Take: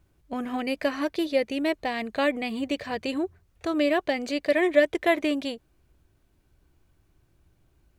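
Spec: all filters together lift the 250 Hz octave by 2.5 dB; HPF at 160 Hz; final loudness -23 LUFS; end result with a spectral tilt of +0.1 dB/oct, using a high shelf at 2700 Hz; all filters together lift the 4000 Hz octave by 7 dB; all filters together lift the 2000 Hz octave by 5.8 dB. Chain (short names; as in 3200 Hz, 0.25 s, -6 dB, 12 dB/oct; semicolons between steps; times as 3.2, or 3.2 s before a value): HPF 160 Hz; bell 250 Hz +3.5 dB; bell 2000 Hz +4 dB; high shelf 2700 Hz +4 dB; bell 4000 Hz +4.5 dB; gain +1 dB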